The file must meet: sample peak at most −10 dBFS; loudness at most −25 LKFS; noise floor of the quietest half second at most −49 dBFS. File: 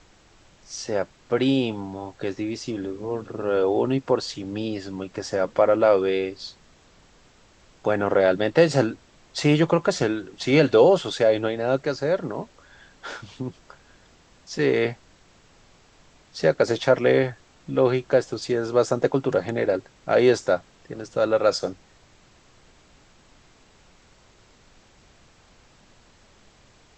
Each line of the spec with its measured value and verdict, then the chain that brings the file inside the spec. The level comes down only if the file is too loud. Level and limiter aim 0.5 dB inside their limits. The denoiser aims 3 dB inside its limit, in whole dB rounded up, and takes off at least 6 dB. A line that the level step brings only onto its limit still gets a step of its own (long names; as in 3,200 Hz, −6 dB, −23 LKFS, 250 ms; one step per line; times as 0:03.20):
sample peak −4.0 dBFS: out of spec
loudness −23.0 LKFS: out of spec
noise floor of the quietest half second −55 dBFS: in spec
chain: level −2.5 dB
brickwall limiter −10.5 dBFS